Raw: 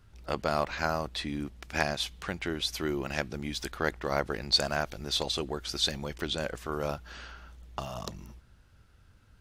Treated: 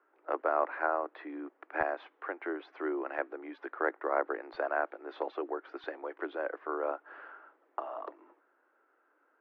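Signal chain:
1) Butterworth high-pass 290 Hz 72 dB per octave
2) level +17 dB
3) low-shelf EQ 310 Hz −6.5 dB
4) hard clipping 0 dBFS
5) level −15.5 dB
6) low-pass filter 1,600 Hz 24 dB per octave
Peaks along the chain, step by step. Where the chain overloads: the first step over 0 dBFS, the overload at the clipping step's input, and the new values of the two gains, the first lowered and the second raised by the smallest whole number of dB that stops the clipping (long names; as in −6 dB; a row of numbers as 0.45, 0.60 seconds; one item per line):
−11.5, +5.5, +5.0, 0.0, −15.5, −15.5 dBFS
step 2, 5.0 dB
step 2 +12 dB, step 5 −10.5 dB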